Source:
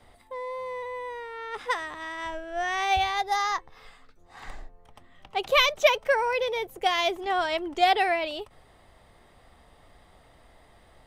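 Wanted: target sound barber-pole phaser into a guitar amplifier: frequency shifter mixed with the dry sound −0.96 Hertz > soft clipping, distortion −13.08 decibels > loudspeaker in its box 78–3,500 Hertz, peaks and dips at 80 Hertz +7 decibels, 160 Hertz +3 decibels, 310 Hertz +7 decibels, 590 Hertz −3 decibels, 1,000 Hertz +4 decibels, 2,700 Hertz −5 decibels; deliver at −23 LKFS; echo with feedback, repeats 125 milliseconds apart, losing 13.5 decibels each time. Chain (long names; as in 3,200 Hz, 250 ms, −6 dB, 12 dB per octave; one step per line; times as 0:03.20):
repeating echo 125 ms, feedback 21%, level −13.5 dB
frequency shifter mixed with the dry sound −0.96 Hz
soft clipping −19.5 dBFS
loudspeaker in its box 78–3,500 Hz, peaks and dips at 80 Hz +7 dB, 160 Hz +3 dB, 310 Hz +7 dB, 590 Hz −3 dB, 1,000 Hz +4 dB, 2,700 Hz −5 dB
level +8 dB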